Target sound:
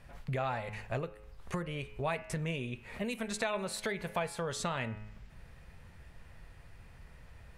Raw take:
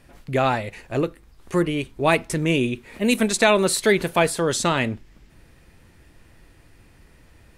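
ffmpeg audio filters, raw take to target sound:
-af "highshelf=f=3.3k:g=-9.5,bandreject=f=106:t=h:w=4,bandreject=f=212:t=h:w=4,bandreject=f=318:t=h:w=4,bandreject=f=424:t=h:w=4,bandreject=f=530:t=h:w=4,bandreject=f=636:t=h:w=4,bandreject=f=742:t=h:w=4,bandreject=f=848:t=h:w=4,bandreject=f=954:t=h:w=4,bandreject=f=1.06k:t=h:w=4,bandreject=f=1.166k:t=h:w=4,bandreject=f=1.272k:t=h:w=4,bandreject=f=1.378k:t=h:w=4,bandreject=f=1.484k:t=h:w=4,bandreject=f=1.59k:t=h:w=4,bandreject=f=1.696k:t=h:w=4,bandreject=f=1.802k:t=h:w=4,bandreject=f=1.908k:t=h:w=4,bandreject=f=2.014k:t=h:w=4,bandreject=f=2.12k:t=h:w=4,bandreject=f=2.226k:t=h:w=4,bandreject=f=2.332k:t=h:w=4,bandreject=f=2.438k:t=h:w=4,bandreject=f=2.544k:t=h:w=4,bandreject=f=2.65k:t=h:w=4,bandreject=f=2.756k:t=h:w=4,bandreject=f=2.862k:t=h:w=4,bandreject=f=2.968k:t=h:w=4,bandreject=f=3.074k:t=h:w=4,bandreject=f=3.18k:t=h:w=4,acompressor=threshold=-30dB:ratio=5,equalizer=f=310:t=o:w=0.69:g=-14.5"

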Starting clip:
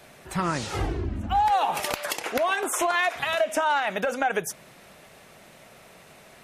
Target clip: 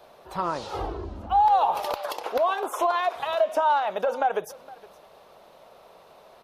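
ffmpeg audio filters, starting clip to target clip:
-filter_complex "[0:a]equalizer=f=125:t=o:w=1:g=-7,equalizer=f=250:t=o:w=1:g=-4,equalizer=f=500:t=o:w=1:g=7,equalizer=f=1k:t=o:w=1:g=9,equalizer=f=2k:t=o:w=1:g=-9,equalizer=f=4k:t=o:w=1:g=5,equalizer=f=8k:t=o:w=1:g=-11,asplit=2[a][b];[b]aecho=0:1:464:0.0841[c];[a][c]amix=inputs=2:normalize=0,volume=-5dB"

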